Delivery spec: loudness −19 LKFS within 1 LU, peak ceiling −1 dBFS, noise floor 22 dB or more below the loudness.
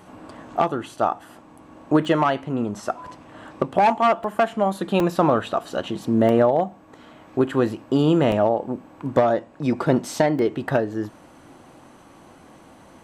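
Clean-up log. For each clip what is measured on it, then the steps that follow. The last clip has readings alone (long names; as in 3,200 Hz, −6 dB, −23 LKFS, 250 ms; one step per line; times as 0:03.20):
number of dropouts 7; longest dropout 1.2 ms; integrated loudness −22.0 LKFS; sample peak −4.5 dBFS; target loudness −19.0 LKFS
→ repair the gap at 0:00.48/0:02.05/0:04.24/0:05.00/0:06.29/0:08.32/0:10.39, 1.2 ms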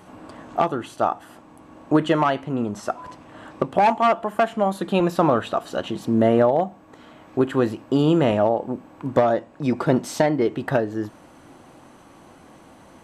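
number of dropouts 0; integrated loudness −22.0 LKFS; sample peak −4.5 dBFS; target loudness −19.0 LKFS
→ level +3 dB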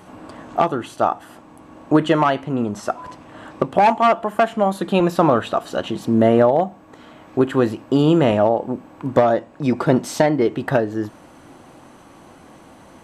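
integrated loudness −19.0 LKFS; sample peak −1.5 dBFS; background noise floor −46 dBFS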